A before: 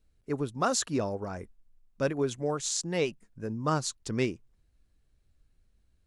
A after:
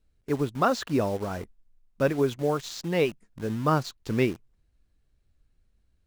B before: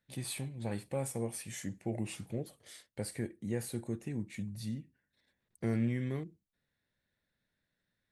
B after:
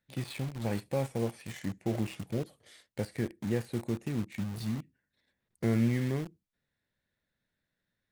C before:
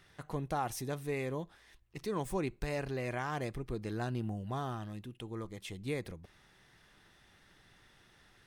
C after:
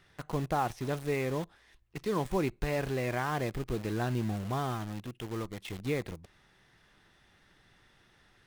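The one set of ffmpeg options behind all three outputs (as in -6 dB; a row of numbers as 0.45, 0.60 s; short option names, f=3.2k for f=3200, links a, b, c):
-filter_complex "[0:a]acrossover=split=4400[a][b];[b]acompressor=threshold=-55dB:ratio=4:attack=1:release=60[c];[a][c]amix=inputs=2:normalize=0,highshelf=f=6.3k:g=-5,asplit=2[d][e];[e]acrusher=bits=6:mix=0:aa=0.000001,volume=-3dB[f];[d][f]amix=inputs=2:normalize=0"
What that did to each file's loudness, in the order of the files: +3.5, +4.5, +4.5 LU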